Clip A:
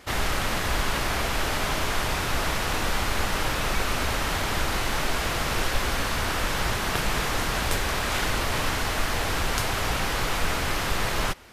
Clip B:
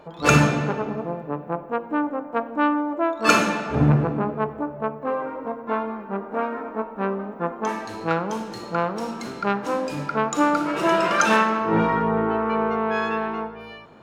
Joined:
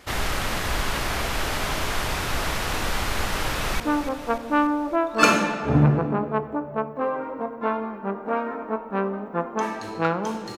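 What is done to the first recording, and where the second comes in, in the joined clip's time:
clip A
3.51–3.80 s: echo throw 290 ms, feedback 60%, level -9.5 dB
3.80 s: go over to clip B from 1.86 s

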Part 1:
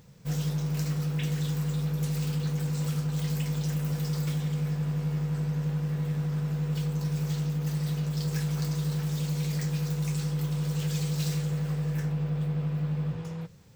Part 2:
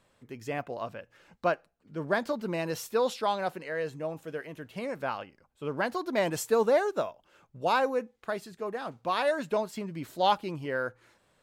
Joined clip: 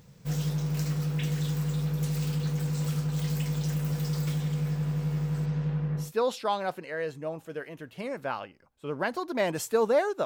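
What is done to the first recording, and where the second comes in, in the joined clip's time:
part 1
5.45–6.12 s: low-pass 6.5 kHz -> 1.2 kHz
6.04 s: go over to part 2 from 2.82 s, crossfade 0.16 s

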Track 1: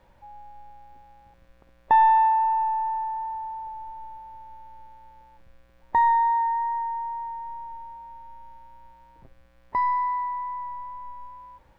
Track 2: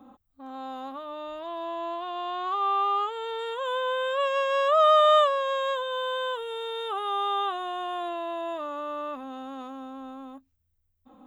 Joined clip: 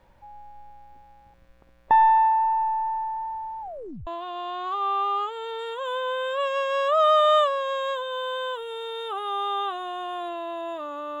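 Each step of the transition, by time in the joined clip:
track 1
3.61 s: tape stop 0.46 s
4.07 s: go over to track 2 from 1.87 s

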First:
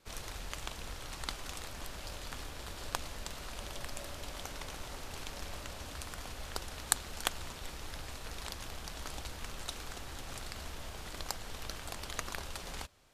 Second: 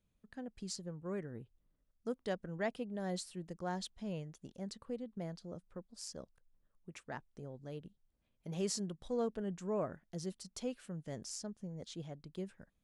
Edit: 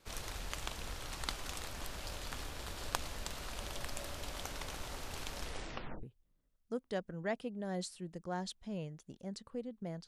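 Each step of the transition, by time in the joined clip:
first
5.39 s: tape stop 0.64 s
6.03 s: go over to second from 1.38 s

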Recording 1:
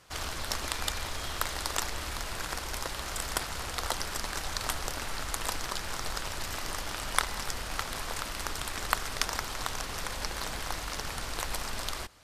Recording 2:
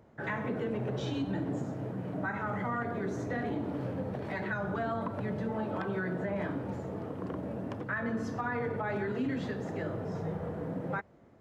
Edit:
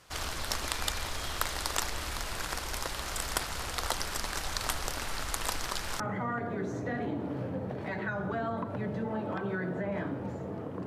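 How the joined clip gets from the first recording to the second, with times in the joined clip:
recording 1
6.00 s: go over to recording 2 from 2.44 s

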